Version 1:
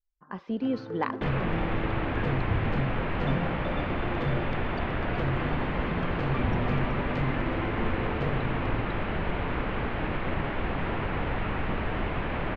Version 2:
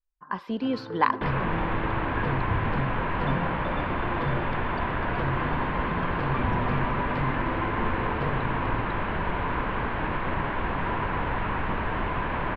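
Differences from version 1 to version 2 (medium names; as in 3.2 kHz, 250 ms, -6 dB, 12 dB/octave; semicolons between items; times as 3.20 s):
speech: remove tape spacing loss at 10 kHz 24 dB; master: add graphic EQ with 31 bands 1 kHz +10 dB, 1.6 kHz +5 dB, 6.3 kHz -11 dB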